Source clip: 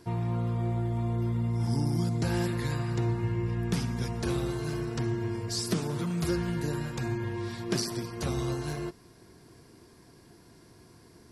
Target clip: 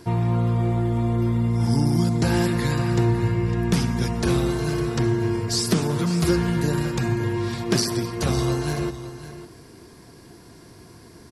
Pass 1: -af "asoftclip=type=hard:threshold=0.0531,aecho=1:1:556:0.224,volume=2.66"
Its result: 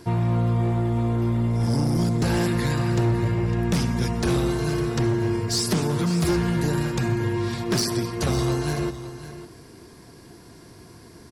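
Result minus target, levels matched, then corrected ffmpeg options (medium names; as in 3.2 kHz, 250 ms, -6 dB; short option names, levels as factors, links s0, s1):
hard clipper: distortion +21 dB
-af "asoftclip=type=hard:threshold=0.112,aecho=1:1:556:0.224,volume=2.66"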